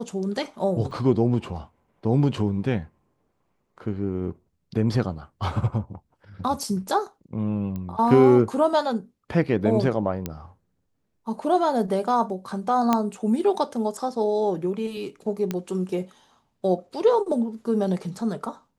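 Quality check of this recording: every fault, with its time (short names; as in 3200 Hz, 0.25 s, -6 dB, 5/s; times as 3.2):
0.91 gap 2.2 ms
7.76 pop -21 dBFS
10.26 pop -13 dBFS
12.93 pop -7 dBFS
15.51 pop -13 dBFS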